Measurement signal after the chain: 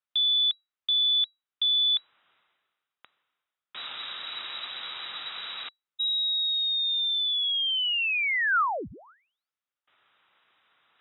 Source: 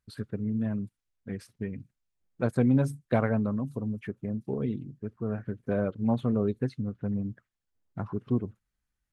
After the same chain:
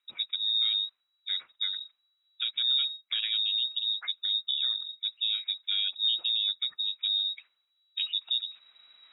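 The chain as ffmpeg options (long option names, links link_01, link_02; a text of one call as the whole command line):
ffmpeg -i in.wav -af "areverse,acompressor=mode=upward:threshold=-42dB:ratio=2.5,areverse,lowpass=frequency=3300:width_type=q:width=0.5098,lowpass=frequency=3300:width_type=q:width=0.6013,lowpass=frequency=3300:width_type=q:width=0.9,lowpass=frequency=3300:width_type=q:width=2.563,afreqshift=-3900,highpass=frequency=110:poles=1,equalizer=frequency=1300:width_type=o:width=0.51:gain=7,alimiter=limit=-22.5dB:level=0:latency=1:release=466,volume=3.5dB" -ar 48000 -c:a libopus -b:a 128k out.opus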